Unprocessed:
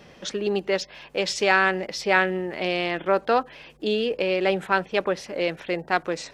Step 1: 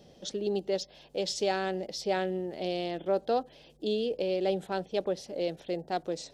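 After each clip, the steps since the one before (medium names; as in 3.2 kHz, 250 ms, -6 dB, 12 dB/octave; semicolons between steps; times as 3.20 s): high-order bell 1.6 kHz -13 dB; trim -5.5 dB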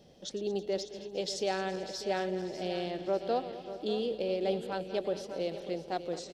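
backward echo that repeats 110 ms, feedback 75%, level -13.5 dB; feedback delay 593 ms, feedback 41%, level -12.5 dB; trim -3 dB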